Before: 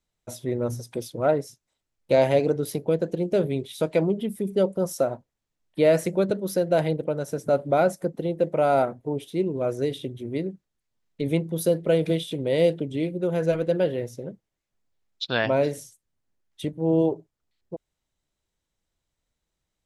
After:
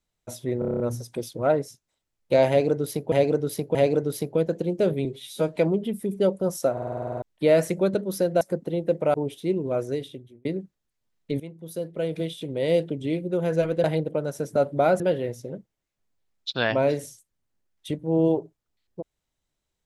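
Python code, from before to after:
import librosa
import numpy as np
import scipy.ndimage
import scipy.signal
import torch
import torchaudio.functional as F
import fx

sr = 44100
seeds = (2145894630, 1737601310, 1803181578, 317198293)

y = fx.edit(x, sr, fx.stutter(start_s=0.59, slice_s=0.03, count=8),
    fx.repeat(start_s=2.28, length_s=0.63, count=3),
    fx.stretch_span(start_s=3.58, length_s=0.34, factor=1.5),
    fx.stutter_over(start_s=5.08, slice_s=0.05, count=10),
    fx.move(start_s=6.77, length_s=1.16, to_s=13.74),
    fx.cut(start_s=8.66, length_s=0.38),
    fx.fade_out_span(start_s=9.66, length_s=0.69),
    fx.fade_in_from(start_s=11.3, length_s=1.66, floor_db=-18.0), tone=tone)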